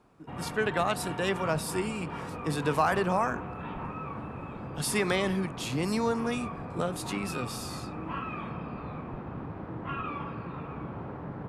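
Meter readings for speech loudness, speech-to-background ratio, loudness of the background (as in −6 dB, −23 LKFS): −31.0 LKFS, 7.5 dB, −38.5 LKFS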